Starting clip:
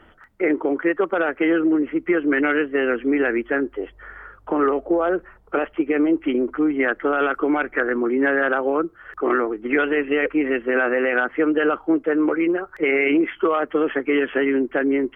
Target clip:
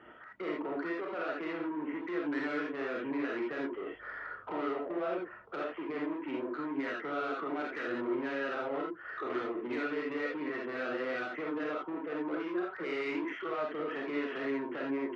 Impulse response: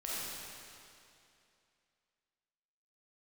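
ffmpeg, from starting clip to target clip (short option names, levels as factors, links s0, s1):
-filter_complex "[0:a]acompressor=threshold=0.0562:ratio=6,asoftclip=type=tanh:threshold=0.0299,highpass=140,lowpass=3000[s0];[1:a]atrim=start_sample=2205,atrim=end_sample=3969[s1];[s0][s1]afir=irnorm=-1:irlink=0"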